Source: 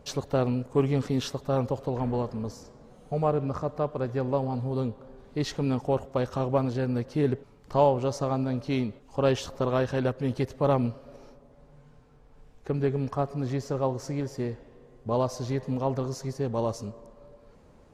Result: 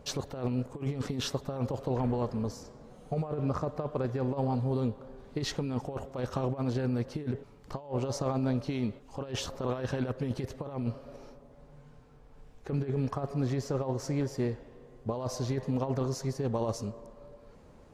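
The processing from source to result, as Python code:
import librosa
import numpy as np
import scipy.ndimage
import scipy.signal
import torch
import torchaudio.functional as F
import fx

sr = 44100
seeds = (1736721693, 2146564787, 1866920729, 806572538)

y = fx.over_compress(x, sr, threshold_db=-28.0, ratio=-0.5)
y = y * 10.0 ** (-2.0 / 20.0)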